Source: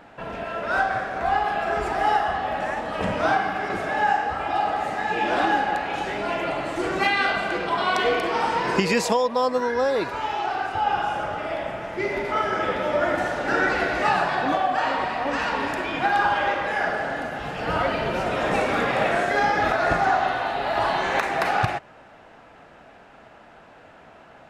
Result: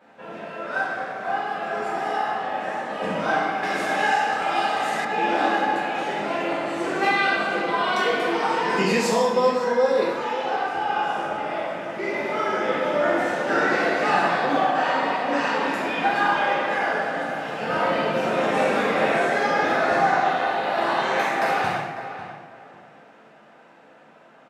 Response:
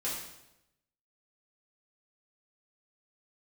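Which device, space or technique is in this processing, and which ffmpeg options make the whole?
far laptop microphone: -filter_complex "[1:a]atrim=start_sample=2205[s0];[0:a][s0]afir=irnorm=-1:irlink=0,highpass=f=140:w=0.5412,highpass=f=140:w=1.3066,dynaudnorm=f=520:g=11:m=3.76,asettb=1/sr,asplit=3[s1][s2][s3];[s1]atrim=end=3.634[s4];[s2]atrim=start=3.63:end=5.05,asetpts=PTS-STARTPTS,afade=t=in:d=0.004:c=qsin,afade=t=out:st=1.416:d=0.004:c=qsin,highshelf=f=2300:g=11.5[s5];[s3]atrim=start=5.046[s6];[s4][s5]acrossfade=d=0.004:c1=hsin:c2=qsin[s7];[s7][s6]acrossfade=d=0.004:c1=qsin:c2=hsin,asplit=2[s8][s9];[s9]adelay=548,lowpass=f=2500:p=1,volume=0.282,asplit=2[s10][s11];[s11]adelay=548,lowpass=f=2500:p=1,volume=0.22,asplit=2[s12][s13];[s13]adelay=548,lowpass=f=2500:p=1,volume=0.22[s14];[s8][s10][s12][s14]amix=inputs=4:normalize=0,volume=0.422"

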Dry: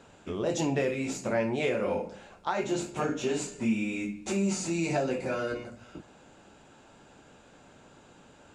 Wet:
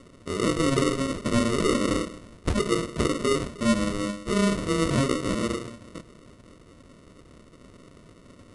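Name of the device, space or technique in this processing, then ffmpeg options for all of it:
crushed at another speed: -af "asetrate=88200,aresample=44100,acrusher=samples=27:mix=1:aa=0.000001,asetrate=22050,aresample=44100,volume=1.78"

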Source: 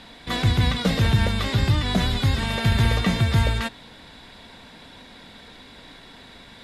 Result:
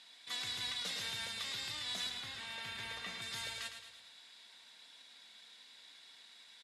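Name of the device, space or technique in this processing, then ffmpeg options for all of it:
piezo pickup straight into a mixer: -filter_complex "[0:a]lowpass=7900,aderivative,asettb=1/sr,asplit=3[s0][s1][s2];[s0]atrim=end=2.094[s3];[s1]atrim=start=2.09:end=3.22,asetpts=PTS-STARTPTS,afade=t=in:d=0.004:c=qsin,afade=t=out:st=1.126:d=0.004:c=qsin,acrossover=split=3000[s4][s5];[s5]acompressor=threshold=0.00398:ratio=4:attack=1:release=60[s6];[s4][s6]amix=inputs=2:normalize=0[s7];[s2]atrim=start=3.216[s8];[s3][s7]acrossfade=d=0.004:c1=hsin:c2=qsin[s9];[s9][s8]acrossfade=d=0.004:c1=qsin:c2=hsin,aecho=1:1:109|218|327|436|545|654:0.398|0.211|0.112|0.0593|0.0314|0.0166,volume=0.631"

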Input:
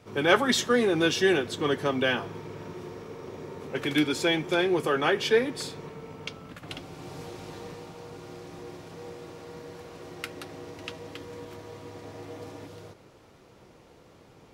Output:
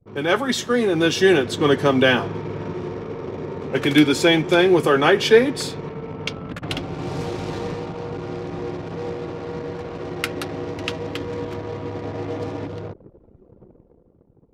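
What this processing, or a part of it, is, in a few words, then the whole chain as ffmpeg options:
voice memo with heavy noise removal: -af "lowshelf=f=460:g=3.5,anlmdn=0.0251,dynaudnorm=f=110:g=17:m=3.76"

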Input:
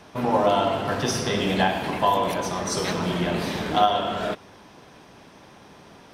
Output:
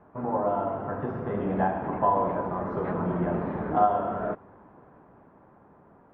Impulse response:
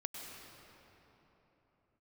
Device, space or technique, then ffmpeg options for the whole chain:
action camera in a waterproof case: -af "lowpass=f=1400:w=0.5412,lowpass=f=1400:w=1.3066,dynaudnorm=f=230:g=13:m=2,volume=0.473" -ar 32000 -c:a aac -b:a 64k

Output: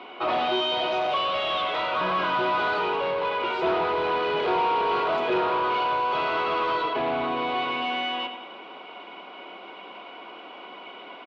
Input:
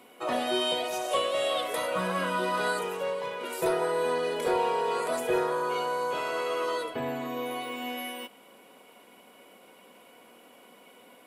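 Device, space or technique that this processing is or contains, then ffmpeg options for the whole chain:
overdrive pedal into a guitar cabinet: -filter_complex "[0:a]asettb=1/sr,asplit=3[s0][s1][s2];[s0]atrim=end=1.104[s3];[s1]atrim=start=1.1:end=2.01,asetpts=PTS-STARTPTS,afade=t=in:d=0.004:c=qsin,afade=t=out:st=0.906:d=0.004:c=qsin,highpass=f=790:p=1[s4];[s2]atrim=start=2.006[s5];[s3][s4]acrossfade=d=0.004:c1=hsin:c2=qsin[s6];[s6][s5]acrossfade=d=0.004:c1=qsin:c2=hsin,lowpass=f=7400:w=0.5412,lowpass=f=7400:w=1.3066,equalizer=f=490:t=o:w=0.21:g=-5,aecho=1:1:101|202|303|404|505:0.251|0.116|0.0532|0.0244|0.0112,asplit=2[s7][s8];[s8]highpass=f=720:p=1,volume=15.8,asoftclip=type=tanh:threshold=0.158[s9];[s7][s9]amix=inputs=2:normalize=0,lowpass=f=2500:p=1,volume=0.501,highpass=99,equalizer=f=110:t=q:w=4:g=-9,equalizer=f=240:t=q:w=4:g=-6,equalizer=f=340:t=q:w=4:g=4,equalizer=f=520:t=q:w=4:g=-5,equalizer=f=1800:t=q:w=4:g=-9,lowpass=f=3800:w=0.5412,lowpass=f=3800:w=1.3066"

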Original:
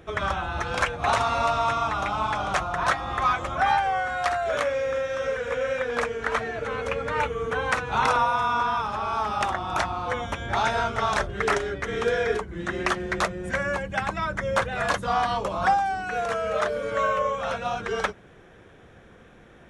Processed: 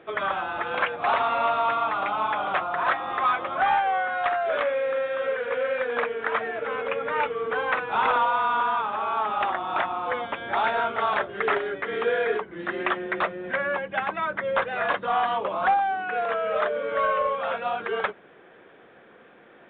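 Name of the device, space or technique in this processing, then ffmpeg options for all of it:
telephone: -af "highpass=300,lowpass=3400,asoftclip=type=tanh:threshold=0.178,volume=1.19" -ar 8000 -c:a pcm_mulaw

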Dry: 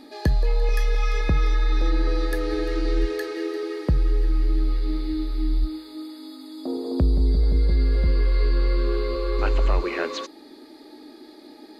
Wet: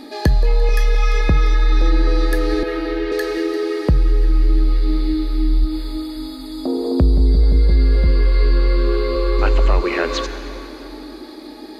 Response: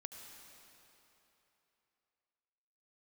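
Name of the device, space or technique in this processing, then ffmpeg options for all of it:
ducked reverb: -filter_complex "[0:a]asettb=1/sr,asplit=3[s0][s1][s2];[s0]atrim=end=2.634[s3];[s1]atrim=start=2.63:end=3.12,asetpts=PTS-STARTPTS,afade=t=in:d=0.004:c=qsin,afade=t=out:st=0.486:d=0.004:c=qsin,acrossover=split=280 3900:gain=0.126 1 0.0891[s4][s5][s6];[s4][s5][s6]amix=inputs=3:normalize=0[s7];[s2]atrim=start=3.116[s8];[s3][s7]acrossfade=d=0.004:c1=hsin:c2=qsin[s9];[s9][s8]acrossfade=d=0.004:c1=qsin:c2=hsin,asplit=3[s10][s11][s12];[1:a]atrim=start_sample=2205[s13];[s11][s13]afir=irnorm=-1:irlink=0[s14];[s12]apad=whole_len=520042[s15];[s14][s15]sidechaincompress=threshold=0.0316:ratio=8:attack=16:release=120,volume=1.33[s16];[s10][s16]amix=inputs=2:normalize=0,volume=1.68"

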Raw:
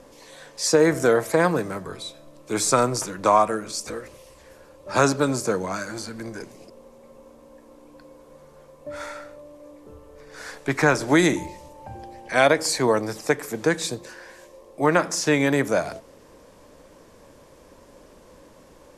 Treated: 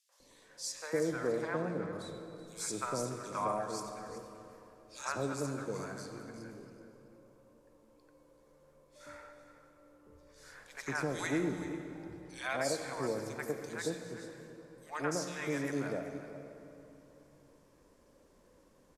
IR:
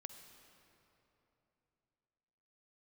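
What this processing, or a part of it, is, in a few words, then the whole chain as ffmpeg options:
cave: -filter_complex "[0:a]asettb=1/sr,asplit=3[s0][s1][s2];[s0]atrim=end=1.124[s3];[s1]atrim=start=1.12:end=1.93,asetpts=PTS-STARTPTS,afade=t=in:d=0.004:c=qsin,afade=t=out:st=0.806:d=0.004:c=qsin,lowpass=5200[s4];[s2]atrim=start=1.926[s5];[s3][s4]acrossfade=d=0.004:c1=hsin:c2=qsin[s6];[s6][s5]acrossfade=d=0.004:c1=qsin:c2=hsin,acrossover=split=760|3000[s7][s8][s9];[s8]adelay=90[s10];[s7]adelay=200[s11];[s11][s10][s9]amix=inputs=3:normalize=0,aecho=1:1:380:0.2[s12];[1:a]atrim=start_sample=2205[s13];[s12][s13]afir=irnorm=-1:irlink=0,volume=0.355"

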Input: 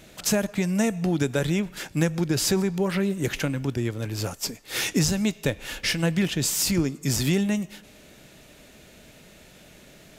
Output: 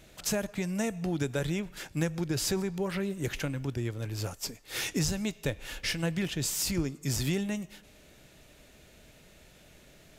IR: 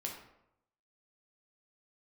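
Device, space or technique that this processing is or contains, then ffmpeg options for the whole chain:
low shelf boost with a cut just above: -af "lowshelf=f=100:g=6.5,equalizer=f=210:t=o:w=0.89:g=-3.5,volume=0.473"

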